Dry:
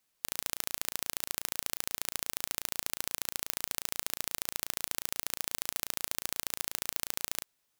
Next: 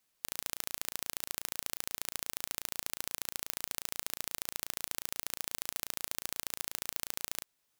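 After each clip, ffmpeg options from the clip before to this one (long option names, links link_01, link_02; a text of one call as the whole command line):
ffmpeg -i in.wav -af "alimiter=limit=-6.5dB:level=0:latency=1:release=347" out.wav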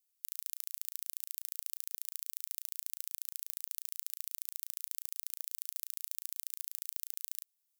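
ffmpeg -i in.wav -af "aderivative,volume=-5.5dB" out.wav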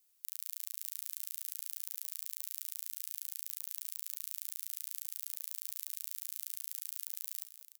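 ffmpeg -i in.wav -af "alimiter=limit=-22.5dB:level=0:latency=1:release=30,aecho=1:1:46|206|544:0.178|0.188|0.188,volume=8dB" out.wav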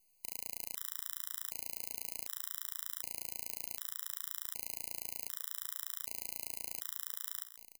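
ffmpeg -i in.wav -af "aeval=exprs='if(lt(val(0),0),0.447*val(0),val(0))':channel_layout=same,afftfilt=real='re*gt(sin(2*PI*0.66*pts/sr)*(1-2*mod(floor(b*sr/1024/1000),2)),0)':imag='im*gt(sin(2*PI*0.66*pts/sr)*(1-2*mod(floor(b*sr/1024/1000),2)),0)':win_size=1024:overlap=0.75,volume=5.5dB" out.wav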